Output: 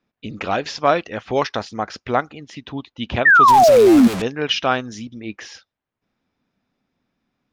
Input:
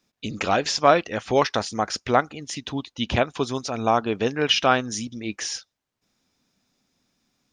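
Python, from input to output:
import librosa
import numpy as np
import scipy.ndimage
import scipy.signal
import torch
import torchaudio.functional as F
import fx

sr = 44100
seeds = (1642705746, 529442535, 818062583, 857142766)

y = fx.clip_1bit(x, sr, at=(3.48, 4.22))
y = fx.spec_paint(y, sr, seeds[0], shape='fall', start_s=3.25, length_s=0.83, low_hz=220.0, high_hz=1900.0, level_db=-10.0)
y = fx.env_lowpass(y, sr, base_hz=2400.0, full_db=-9.5)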